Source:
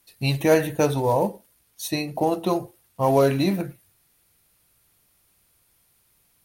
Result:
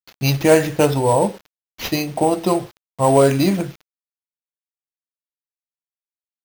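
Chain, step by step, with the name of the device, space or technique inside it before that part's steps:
early 8-bit sampler (sample-rate reduction 8,800 Hz, jitter 0%; bit reduction 8 bits)
level +5 dB

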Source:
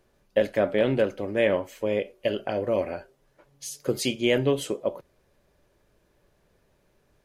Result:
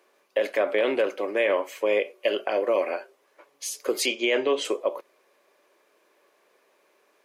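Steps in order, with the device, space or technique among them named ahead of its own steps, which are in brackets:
laptop speaker (high-pass filter 340 Hz 24 dB per octave; parametric band 1,100 Hz +8 dB 0.22 octaves; parametric band 2,300 Hz +5.5 dB 0.53 octaves; brickwall limiter −17.5 dBFS, peak gain reduction 8 dB)
0:04.06–0:04.65: low-pass filter 6,900 Hz 24 dB per octave
level +4 dB

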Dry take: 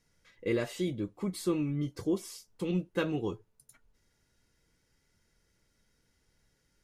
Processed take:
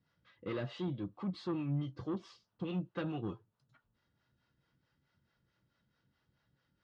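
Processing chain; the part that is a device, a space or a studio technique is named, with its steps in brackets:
guitar amplifier with harmonic tremolo (two-band tremolo in antiphase 4.6 Hz, depth 70%, crossover 430 Hz; soft clipping −30.5 dBFS, distortion −14 dB; loudspeaker in its box 84–3,900 Hz, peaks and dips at 130 Hz +6 dB, 430 Hz −8 dB, 1,200 Hz +4 dB, 2,200 Hz −8 dB)
level +1 dB

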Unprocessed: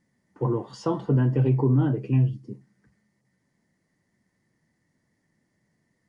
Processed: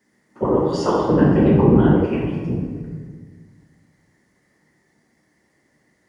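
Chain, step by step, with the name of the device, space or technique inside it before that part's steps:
whispering ghost (random phases in short frames; high-pass filter 310 Hz 6 dB per octave; convolution reverb RT60 1.6 s, pre-delay 5 ms, DRR −3.5 dB)
0:02.06–0:02.50: low-shelf EQ 340 Hz −10.5 dB
level +7 dB

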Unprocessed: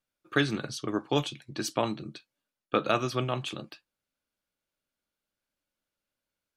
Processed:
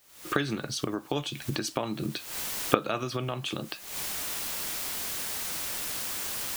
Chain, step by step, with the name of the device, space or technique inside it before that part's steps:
cheap recorder with automatic gain (white noise bed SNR 25 dB; camcorder AGC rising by 76 dB per second)
level −5 dB

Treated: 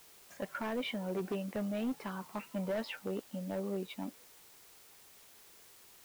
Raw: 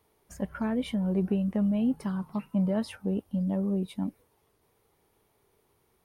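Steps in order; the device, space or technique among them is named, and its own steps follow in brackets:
drive-through speaker (band-pass filter 380–4,000 Hz; parametric band 2,400 Hz +5 dB; hard clipping −30.5 dBFS, distortion −13 dB; white noise bed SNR 19 dB)

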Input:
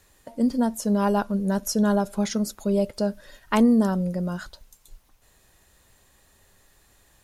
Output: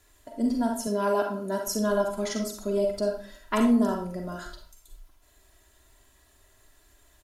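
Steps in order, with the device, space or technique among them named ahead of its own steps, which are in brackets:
microphone above a desk (comb filter 3 ms, depth 68%; convolution reverb RT60 0.45 s, pre-delay 38 ms, DRR 1.5 dB)
0:00.87–0:01.67: high-pass filter 140 Hz 12 dB per octave
level −5 dB

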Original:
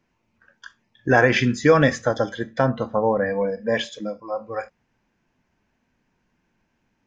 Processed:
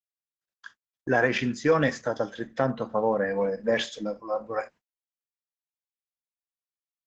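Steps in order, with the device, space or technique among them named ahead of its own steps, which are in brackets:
video call (high-pass filter 140 Hz 12 dB per octave; automatic gain control gain up to 7.5 dB; noise gate −39 dBFS, range −40 dB; level −8 dB; Opus 12 kbit/s 48,000 Hz)

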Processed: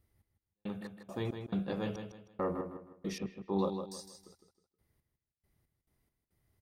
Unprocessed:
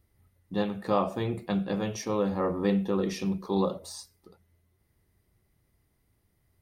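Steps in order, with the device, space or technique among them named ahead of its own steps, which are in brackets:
trance gate with a delay (gate pattern "x..x.x.xx.." 69 BPM −60 dB; repeating echo 158 ms, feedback 32%, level −7.5 dB)
0:03.18–0:03.59: low-pass filter 1,900 Hz 12 dB per octave
level −5.5 dB

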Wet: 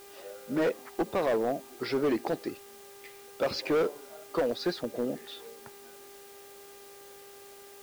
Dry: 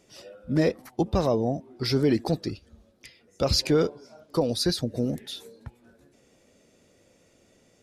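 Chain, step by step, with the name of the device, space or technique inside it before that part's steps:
aircraft radio (band-pass filter 370–2,300 Hz; hard clipping −24 dBFS, distortion −11 dB; hum with harmonics 400 Hz, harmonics 27, −54 dBFS −8 dB per octave; white noise bed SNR 21 dB)
level +1.5 dB

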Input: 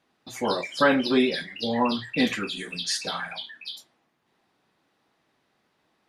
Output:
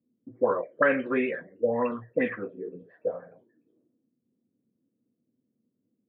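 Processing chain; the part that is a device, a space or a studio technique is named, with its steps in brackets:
envelope filter bass rig (envelope-controlled low-pass 240–2,600 Hz up, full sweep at −17.5 dBFS; loudspeaker in its box 74–2,000 Hz, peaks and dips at 76 Hz −10 dB, 110 Hz +6 dB, 170 Hz −3 dB, 500 Hz +10 dB, 840 Hz −10 dB, 1,800 Hz +4 dB)
level −7 dB

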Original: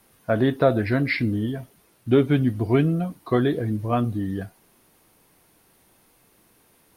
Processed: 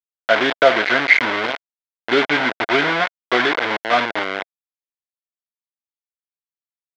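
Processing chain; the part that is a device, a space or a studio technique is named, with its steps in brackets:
hand-held game console (bit reduction 4 bits; loudspeaker in its box 400–4,600 Hz, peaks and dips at 680 Hz +5 dB, 1,000 Hz +3 dB, 1,500 Hz +9 dB, 2,100 Hz +10 dB, 3,300 Hz +6 dB)
level +3 dB

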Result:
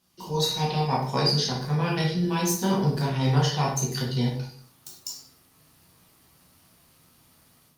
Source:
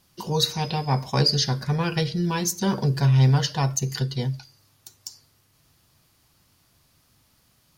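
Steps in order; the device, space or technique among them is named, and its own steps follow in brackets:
far-field microphone of a smart speaker (convolution reverb RT60 0.60 s, pre-delay 10 ms, DRR −4 dB; high-pass filter 130 Hz 6 dB per octave; automatic gain control gain up to 10 dB; level −9 dB; Opus 48 kbit/s 48,000 Hz)

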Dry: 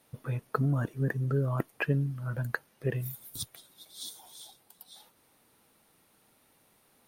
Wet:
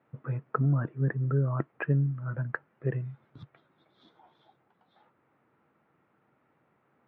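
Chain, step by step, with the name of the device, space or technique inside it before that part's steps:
bass cabinet (loudspeaker in its box 89–2,100 Hz, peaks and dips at 140 Hz +6 dB, 340 Hz +3 dB, 1,300 Hz +4 dB)
level −2 dB

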